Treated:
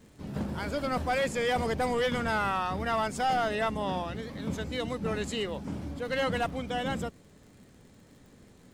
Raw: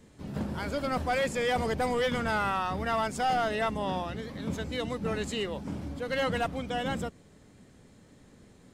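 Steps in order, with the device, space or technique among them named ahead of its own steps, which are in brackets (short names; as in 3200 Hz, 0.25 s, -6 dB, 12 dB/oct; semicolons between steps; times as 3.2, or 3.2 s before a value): vinyl LP (wow and flutter 20 cents; crackle 53/s -48 dBFS; pink noise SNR 44 dB)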